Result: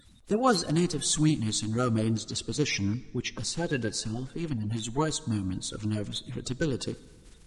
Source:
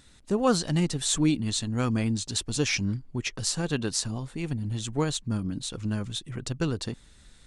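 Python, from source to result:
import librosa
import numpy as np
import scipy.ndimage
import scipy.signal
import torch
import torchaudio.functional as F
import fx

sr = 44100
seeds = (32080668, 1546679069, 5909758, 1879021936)

y = fx.spec_quant(x, sr, step_db=30)
y = fx.air_absorb(y, sr, metres=57.0, at=(2.15, 4.69))
y = fx.rev_plate(y, sr, seeds[0], rt60_s=1.9, hf_ratio=0.65, predelay_ms=0, drr_db=17.5)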